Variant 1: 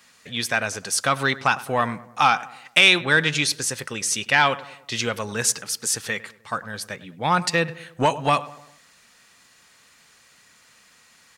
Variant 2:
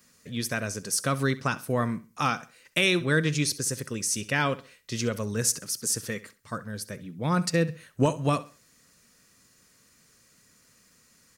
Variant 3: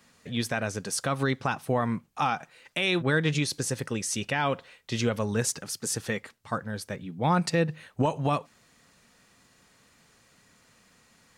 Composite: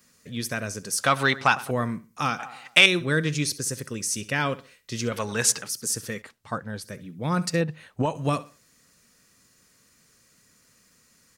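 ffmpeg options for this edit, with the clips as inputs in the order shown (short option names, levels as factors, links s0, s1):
-filter_complex "[0:a]asplit=3[s0][s1][s2];[2:a]asplit=2[s3][s4];[1:a]asplit=6[s5][s6][s7][s8][s9][s10];[s5]atrim=end=1.002[s11];[s0]atrim=start=0.998:end=1.712[s12];[s6]atrim=start=1.708:end=2.392[s13];[s1]atrim=start=2.388:end=2.862[s14];[s7]atrim=start=2.858:end=5.122[s15];[s2]atrim=start=5.118:end=5.682[s16];[s8]atrim=start=5.678:end=6.222[s17];[s3]atrim=start=6.218:end=6.842[s18];[s9]atrim=start=6.838:end=7.612[s19];[s4]atrim=start=7.608:end=8.152[s20];[s10]atrim=start=8.148[s21];[s11][s12]acrossfade=d=0.004:c1=hsin:c2=hsin[s22];[s22][s13]acrossfade=d=0.004:c1=hsin:c2=hsin[s23];[s23][s14]acrossfade=d=0.004:c1=hsin:c2=hsin[s24];[s24][s15]acrossfade=d=0.004:c1=hsin:c2=hsin[s25];[s25][s16]acrossfade=d=0.004:c1=hsin:c2=hsin[s26];[s26][s17]acrossfade=d=0.004:c1=hsin:c2=hsin[s27];[s27][s18]acrossfade=d=0.004:c1=hsin:c2=hsin[s28];[s28][s19]acrossfade=d=0.004:c1=hsin:c2=hsin[s29];[s29][s20]acrossfade=d=0.004:c1=hsin:c2=hsin[s30];[s30][s21]acrossfade=d=0.004:c1=hsin:c2=hsin"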